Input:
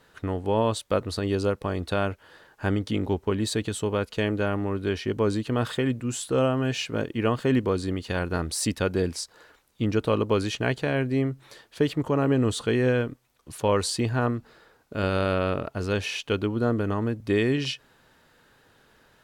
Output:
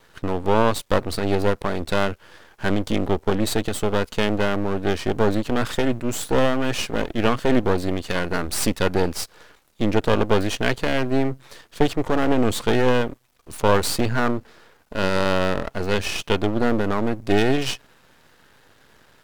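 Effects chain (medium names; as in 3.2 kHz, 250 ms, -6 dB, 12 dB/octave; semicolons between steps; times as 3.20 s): half-wave rectifier; trim +8.5 dB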